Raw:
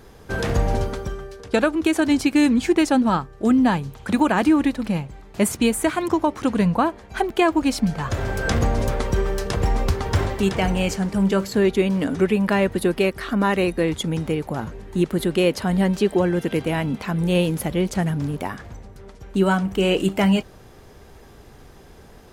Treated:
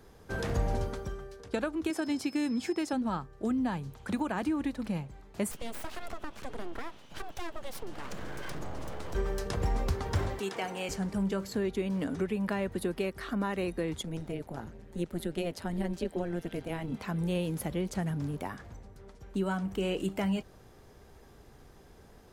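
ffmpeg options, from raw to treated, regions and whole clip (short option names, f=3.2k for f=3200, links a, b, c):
-filter_complex "[0:a]asettb=1/sr,asplit=3[a][b][c];[a]atrim=end=1.904[d];[b]atrim=start=1.9:end=2.93,asetpts=PTS-STARTPTS,afade=t=in:d=0.004:c=qsin,afade=t=out:st=1.026:d=0.004:c=qsin,highpass=150,aeval=exprs='val(0)+0.0112*sin(2*PI*5200*n/s)':c=same[e];[c]atrim=start=2.926[f];[d][e]acrossfade=d=0.004:c1=hsin:c2=qsin[g];[g][f]acrossfade=d=0.004:c1=qsin:c2=hsin,asettb=1/sr,asplit=3[h][i][j];[h]atrim=end=5.514[k];[i]atrim=start=5.51:end=9.15,asetpts=PTS-STARTPTS,afade=t=in:d=0.004:c=qsin,afade=t=out:st=3.636:d=0.004:c=qsin,aeval=exprs='val(0)+0.00398*sin(2*PI*3000*n/s)':c=same,acompressor=threshold=-24dB:ratio=4:attack=3.2:release=140:knee=1:detection=peak,aeval=exprs='abs(val(0))':c=same[l];[j]atrim=start=9.146[m];[k][l]acrossfade=d=0.004:c1=hsin:c2=qsin[n];[n][m]acrossfade=d=0.004:c1=qsin:c2=hsin,asettb=1/sr,asplit=3[o][p][q];[o]atrim=end=10.394[r];[p]atrim=start=10.39:end=10.89,asetpts=PTS-STARTPTS,afade=t=in:d=0.004:c=qsin,afade=t=out:st=0.496:d=0.004:c=qsin,highpass=360,bandreject=f=590:w=11[s];[q]atrim=start=10.886[t];[r][s]acrossfade=d=0.004:c1=hsin:c2=qsin[u];[u][t]acrossfade=d=0.004:c1=qsin:c2=hsin,asettb=1/sr,asplit=3[v][w][x];[v]atrim=end=14.024[y];[w]atrim=start=14.02:end=16.92,asetpts=PTS-STARTPTS,afade=t=in:d=0.004:c=qsin,afade=t=out:st=2.896:d=0.004:c=qsin,bandreject=f=1.1k:w=6.6,tremolo=f=170:d=0.824[z];[x]atrim=start=16.916[aa];[y][z]acrossfade=d=0.004:c1=hsin:c2=qsin[ab];[ab][aa]acrossfade=d=0.004:c1=qsin:c2=hsin,equalizer=f=2.7k:w=1.5:g=-2,acrossover=split=120[ac][ad];[ad]acompressor=threshold=-20dB:ratio=3[ae];[ac][ae]amix=inputs=2:normalize=0,volume=-9dB"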